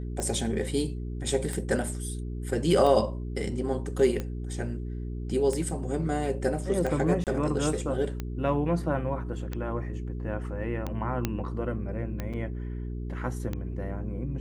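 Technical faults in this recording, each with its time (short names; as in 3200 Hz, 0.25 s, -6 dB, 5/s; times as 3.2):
hum 60 Hz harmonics 7 -34 dBFS
tick 45 rpm -19 dBFS
7.24–7.27 gap 28 ms
11.25 pop -12 dBFS
12.33–12.34 gap 5.9 ms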